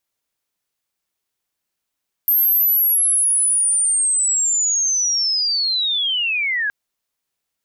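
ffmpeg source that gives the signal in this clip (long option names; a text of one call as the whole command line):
ffmpeg -f lavfi -i "aevalsrc='pow(10,(-12.5-5.5*t/4.42)/20)*sin(2*PI*(13000*t-11400*t*t/(2*4.42)))':duration=4.42:sample_rate=44100" out.wav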